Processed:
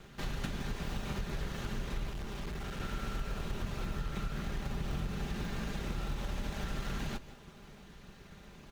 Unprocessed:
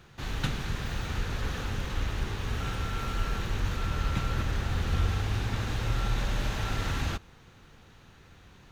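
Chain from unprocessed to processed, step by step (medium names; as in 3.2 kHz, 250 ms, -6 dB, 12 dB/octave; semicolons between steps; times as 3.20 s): comb filter that takes the minimum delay 5 ms; compression 6:1, threshold -37 dBFS, peak gain reduction 13 dB; in parallel at -4 dB: decimation with a swept rate 27×, swing 60% 0.77 Hz; 2.09–2.80 s: on the sum: hard clipper -36 dBFS, distortion -19 dB; on a send: delay 168 ms -17 dB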